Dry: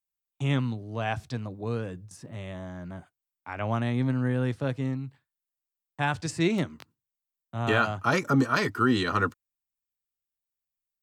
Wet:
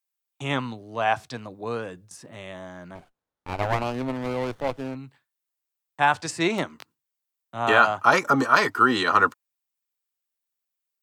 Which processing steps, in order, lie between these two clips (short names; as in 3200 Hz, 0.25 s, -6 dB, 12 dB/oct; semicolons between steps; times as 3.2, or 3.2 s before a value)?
dynamic EQ 910 Hz, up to +7 dB, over -40 dBFS, Q 1; HPF 470 Hz 6 dB/oct; 2.95–4.95 running maximum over 17 samples; gain +4.5 dB